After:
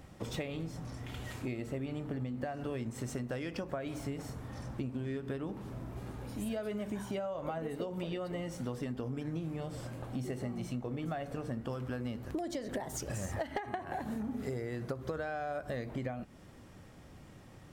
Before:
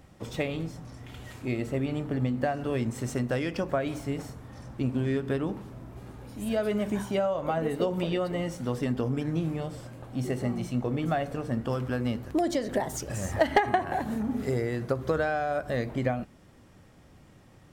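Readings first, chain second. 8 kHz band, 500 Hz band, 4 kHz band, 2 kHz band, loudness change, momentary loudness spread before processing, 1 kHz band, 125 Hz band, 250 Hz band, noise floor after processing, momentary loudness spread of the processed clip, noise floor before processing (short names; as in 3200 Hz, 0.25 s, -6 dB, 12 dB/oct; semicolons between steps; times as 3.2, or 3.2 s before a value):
-5.0 dB, -9.5 dB, -7.5 dB, -10.0 dB, -9.0 dB, 11 LU, -11.0 dB, -7.5 dB, -8.0 dB, -54 dBFS, 6 LU, -55 dBFS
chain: compressor 6:1, threshold -36 dBFS, peak gain reduction 18 dB; gain +1 dB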